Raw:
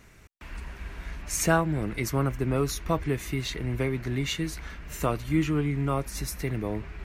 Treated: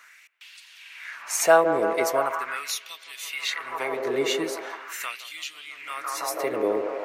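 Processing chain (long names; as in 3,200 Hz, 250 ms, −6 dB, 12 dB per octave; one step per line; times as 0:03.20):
delay with a band-pass on its return 164 ms, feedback 85%, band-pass 670 Hz, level −7 dB
auto-filter high-pass sine 0.41 Hz 430–3,600 Hz
level +3 dB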